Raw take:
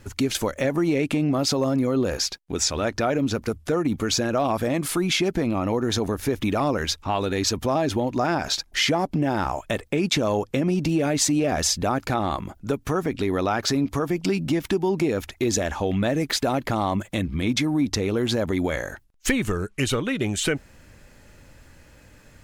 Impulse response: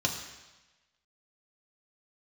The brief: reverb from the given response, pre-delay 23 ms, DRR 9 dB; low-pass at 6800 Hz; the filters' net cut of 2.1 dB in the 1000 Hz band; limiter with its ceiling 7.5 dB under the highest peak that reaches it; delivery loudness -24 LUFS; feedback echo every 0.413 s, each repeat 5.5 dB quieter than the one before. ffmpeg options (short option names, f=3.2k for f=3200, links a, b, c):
-filter_complex "[0:a]lowpass=6.8k,equalizer=f=1k:t=o:g=-3,alimiter=limit=-17dB:level=0:latency=1,aecho=1:1:413|826|1239|1652|2065|2478|2891:0.531|0.281|0.149|0.079|0.0419|0.0222|0.0118,asplit=2[a][b];[1:a]atrim=start_sample=2205,adelay=23[c];[b][c]afir=irnorm=-1:irlink=0,volume=-16.5dB[d];[a][d]amix=inputs=2:normalize=0,volume=0.5dB"